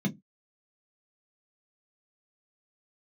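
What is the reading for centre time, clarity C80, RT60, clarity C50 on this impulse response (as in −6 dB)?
9 ms, 28.0 dB, 0.15 s, 23.5 dB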